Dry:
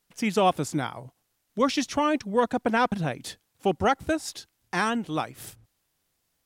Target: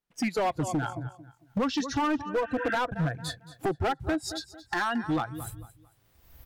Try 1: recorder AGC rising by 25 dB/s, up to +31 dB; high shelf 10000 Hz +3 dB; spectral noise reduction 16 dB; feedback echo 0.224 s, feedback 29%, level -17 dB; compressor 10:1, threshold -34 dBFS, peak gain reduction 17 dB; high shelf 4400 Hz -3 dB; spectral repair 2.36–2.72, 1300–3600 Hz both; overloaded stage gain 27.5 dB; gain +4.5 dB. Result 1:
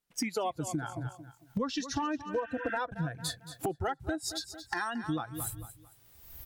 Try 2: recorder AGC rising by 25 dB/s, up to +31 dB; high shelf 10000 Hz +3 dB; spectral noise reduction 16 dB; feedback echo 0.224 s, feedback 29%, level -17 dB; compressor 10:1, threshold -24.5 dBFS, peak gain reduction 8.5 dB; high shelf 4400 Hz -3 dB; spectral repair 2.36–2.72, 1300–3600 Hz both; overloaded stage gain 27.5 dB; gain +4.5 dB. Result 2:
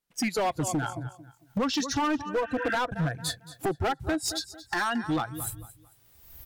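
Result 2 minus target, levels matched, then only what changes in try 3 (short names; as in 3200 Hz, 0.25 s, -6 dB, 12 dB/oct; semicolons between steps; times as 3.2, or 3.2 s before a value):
8000 Hz band +6.5 dB
change: second high shelf 4400 Hz -13.5 dB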